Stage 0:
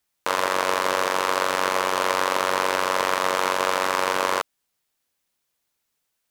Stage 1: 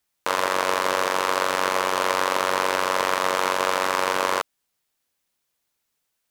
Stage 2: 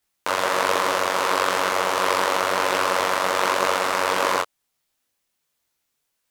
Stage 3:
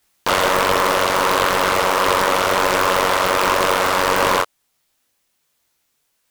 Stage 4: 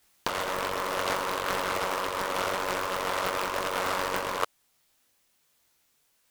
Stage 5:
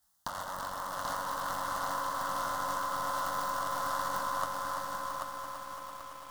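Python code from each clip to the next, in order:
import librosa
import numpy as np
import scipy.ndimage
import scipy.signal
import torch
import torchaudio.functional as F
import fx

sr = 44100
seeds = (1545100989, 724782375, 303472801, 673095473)

y1 = x
y2 = fx.detune_double(y1, sr, cents=49)
y2 = F.gain(torch.from_numpy(y2), 5.0).numpy()
y3 = fx.rider(y2, sr, range_db=10, speed_s=0.5)
y3 = 10.0 ** (-14.0 / 20.0) * (np.abs((y3 / 10.0 ** (-14.0 / 20.0) + 3.0) % 4.0 - 2.0) - 1.0)
y3 = F.gain(torch.from_numpy(y3), 7.0).numpy()
y4 = fx.over_compress(y3, sr, threshold_db=-21.0, ratio=-0.5)
y4 = F.gain(torch.from_numpy(y4), -7.0).numpy()
y5 = fx.fixed_phaser(y4, sr, hz=1000.0, stages=4)
y5 = fx.echo_feedback(y5, sr, ms=786, feedback_pct=32, wet_db=-4)
y5 = fx.echo_crushed(y5, sr, ms=336, feedback_pct=80, bits=8, wet_db=-8)
y5 = F.gain(torch.from_numpy(y5), -5.5).numpy()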